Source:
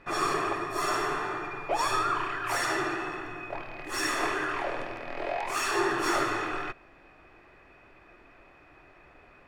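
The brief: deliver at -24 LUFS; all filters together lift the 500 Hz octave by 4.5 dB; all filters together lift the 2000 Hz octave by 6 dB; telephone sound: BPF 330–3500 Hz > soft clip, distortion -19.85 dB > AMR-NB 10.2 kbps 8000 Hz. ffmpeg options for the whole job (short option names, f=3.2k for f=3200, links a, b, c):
-af "highpass=330,lowpass=3.5k,equalizer=f=500:t=o:g=7.5,equalizer=f=2k:t=o:g=7.5,asoftclip=threshold=-17dB,volume=4.5dB" -ar 8000 -c:a libopencore_amrnb -b:a 10200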